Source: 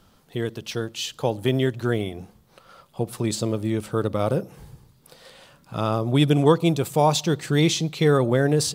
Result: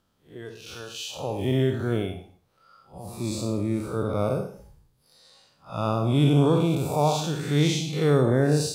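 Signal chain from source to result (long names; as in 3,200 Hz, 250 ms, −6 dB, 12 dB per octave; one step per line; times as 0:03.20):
spectrum smeared in time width 159 ms
noise reduction from a noise print of the clip's start 12 dB
convolution reverb, pre-delay 48 ms, DRR 10 dB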